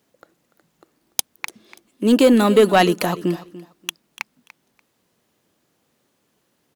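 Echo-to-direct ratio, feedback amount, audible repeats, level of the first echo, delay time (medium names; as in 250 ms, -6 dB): -17.0 dB, 20%, 2, -17.0 dB, 291 ms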